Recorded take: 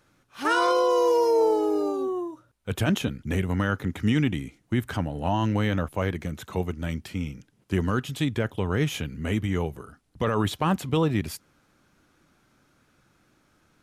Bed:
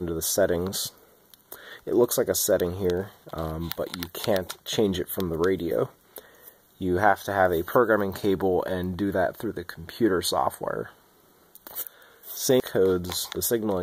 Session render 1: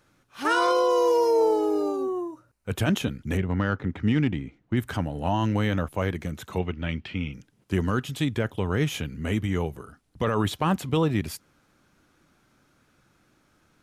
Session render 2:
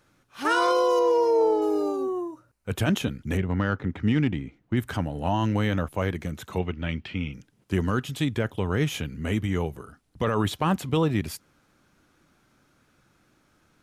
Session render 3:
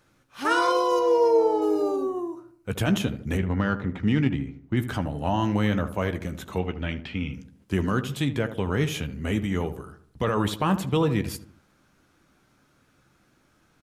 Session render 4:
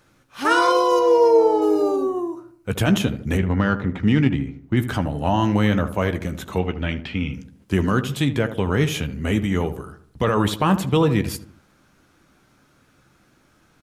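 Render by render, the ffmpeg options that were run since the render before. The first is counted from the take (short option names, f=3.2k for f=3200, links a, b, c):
-filter_complex "[0:a]asettb=1/sr,asplit=3[a][b][c];[a]atrim=end=1.964[d];[b]atrim=start=1.96:end=2.75,asetpts=PTS-STARTPTS,afade=t=in:d=0.004:c=qsin,afade=t=out:st=0.786:d=0.004:c=qsin,equalizer=f=3.4k:w=6.1:g=-12[e];[c]atrim=start=2.746[f];[d][e]acrossfade=d=0.004:c1=hsin:c2=qsin[g];[g][f]acrossfade=d=0.004:c1=qsin:c2=hsin,asettb=1/sr,asplit=3[h][i][j];[h]atrim=end=3.374[k];[i]atrim=start=3.37:end=4.77,asetpts=PTS-STARTPTS,afade=t=in:d=0.004:c=qsin,afade=t=out:st=1.396:d=0.004:c=qsin,adynamicsmooth=sensitivity=1:basefreq=2.9k[l];[j]atrim=start=4.766[m];[k][l]acrossfade=d=0.004:c1=hsin:c2=qsin[n];[n][m]acrossfade=d=0.004:c1=qsin:c2=hsin,asettb=1/sr,asplit=3[o][p][q];[o]atrim=end=6.584[r];[p]atrim=start=6.58:end=7.34,asetpts=PTS-STARTPTS,afade=t=in:d=0.004:c=qsin,afade=t=out:st=0.756:d=0.004:c=qsin,lowpass=f=2.9k:t=q:w=2.1[s];[q]atrim=start=7.336[t];[r][s]acrossfade=d=0.004:c1=hsin:c2=qsin[u];[u][t]acrossfade=d=0.004:c1=qsin:c2=hsin"
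-filter_complex "[0:a]asettb=1/sr,asplit=3[a][b][c];[a]atrim=end=0.994[d];[b]atrim=start=0.99:end=1.62,asetpts=PTS-STARTPTS,afade=t=in:d=0.004:c=qsin,afade=t=out:st=0.626:d=0.004:c=qsin,aemphasis=mode=reproduction:type=50kf[e];[c]atrim=start=1.616[f];[d][e]acrossfade=d=0.004:c1=hsin:c2=qsin[g];[g][f]acrossfade=d=0.004:c1=qsin:c2=hsin"
-filter_complex "[0:a]asplit=2[a][b];[b]adelay=15,volume=-11.5dB[c];[a][c]amix=inputs=2:normalize=0,asplit=2[d][e];[e]adelay=76,lowpass=f=1.2k:p=1,volume=-10.5dB,asplit=2[f][g];[g]adelay=76,lowpass=f=1.2k:p=1,volume=0.49,asplit=2[h][i];[i]adelay=76,lowpass=f=1.2k:p=1,volume=0.49,asplit=2[j][k];[k]adelay=76,lowpass=f=1.2k:p=1,volume=0.49,asplit=2[l][m];[m]adelay=76,lowpass=f=1.2k:p=1,volume=0.49[n];[f][h][j][l][n]amix=inputs=5:normalize=0[o];[d][o]amix=inputs=2:normalize=0"
-af "volume=5dB"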